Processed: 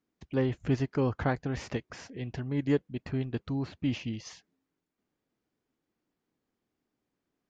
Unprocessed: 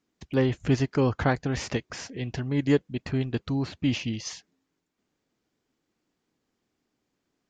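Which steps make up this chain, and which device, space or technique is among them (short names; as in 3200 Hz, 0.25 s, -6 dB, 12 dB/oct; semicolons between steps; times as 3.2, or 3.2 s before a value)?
behind a face mask (high shelf 3400 Hz -8 dB); gain -4.5 dB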